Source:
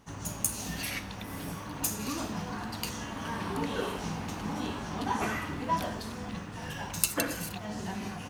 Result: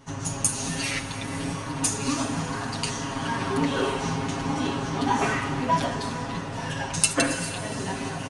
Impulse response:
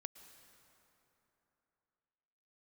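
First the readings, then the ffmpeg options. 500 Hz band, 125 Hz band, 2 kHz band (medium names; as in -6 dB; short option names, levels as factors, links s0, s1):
+8.0 dB, +8.0 dB, +7.5 dB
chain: -filter_complex "[0:a]aecho=1:1:7.4:0.85,asplit=2[s0][s1];[1:a]atrim=start_sample=2205,asetrate=24255,aresample=44100[s2];[s1][s2]afir=irnorm=-1:irlink=0,volume=4.22[s3];[s0][s3]amix=inputs=2:normalize=0,aresample=22050,aresample=44100,volume=0.422"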